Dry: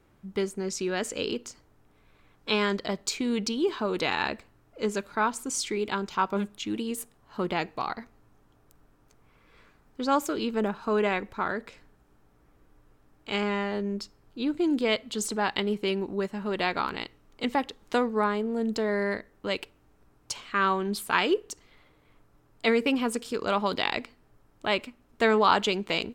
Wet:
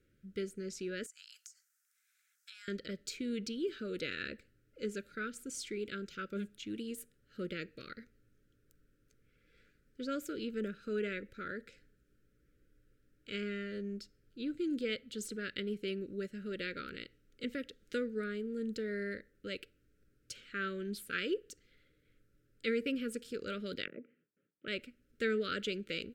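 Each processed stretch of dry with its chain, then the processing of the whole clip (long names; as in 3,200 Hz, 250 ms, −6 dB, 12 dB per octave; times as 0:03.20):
0:01.06–0:02.68: Chebyshev high-pass filter 1,000 Hz, order 5 + high shelf with overshoot 4,800 Hz +11.5 dB, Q 1.5 + downward compressor 4 to 1, threshold −40 dBFS
0:23.85–0:24.68: noise gate with hold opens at −50 dBFS, closes at −54 dBFS + elliptic band-pass filter 160–2,900 Hz + treble cut that deepens with the level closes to 700 Hz, closed at −30 dBFS
whole clip: elliptic band-stop filter 540–1,400 Hz, stop band 40 dB; dynamic equaliser 6,500 Hz, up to −4 dB, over −45 dBFS, Q 0.8; level −9 dB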